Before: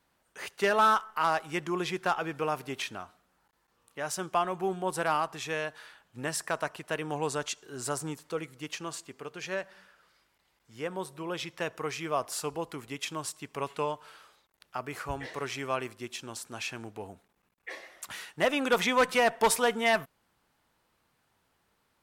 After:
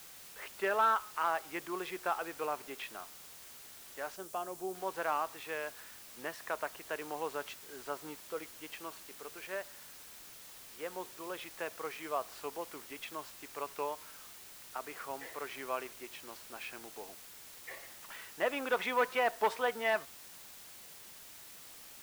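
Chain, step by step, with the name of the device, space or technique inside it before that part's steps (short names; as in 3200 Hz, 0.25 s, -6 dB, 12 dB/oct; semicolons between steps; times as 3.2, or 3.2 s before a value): wax cylinder (BPF 360–2700 Hz; wow and flutter; white noise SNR 13 dB); 4.16–4.75 graphic EQ 1000/2000/4000/8000 Hz -7/-8/-4/+3 dB; gain -5 dB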